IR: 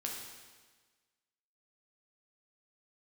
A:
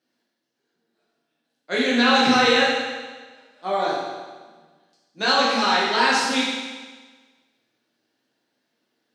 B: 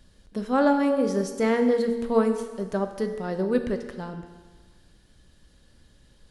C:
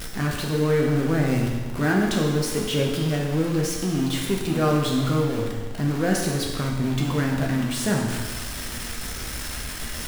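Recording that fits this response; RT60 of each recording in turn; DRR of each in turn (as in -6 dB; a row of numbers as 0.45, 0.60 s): C; 1.4, 1.4, 1.4 s; -7.0, 6.5, -1.5 dB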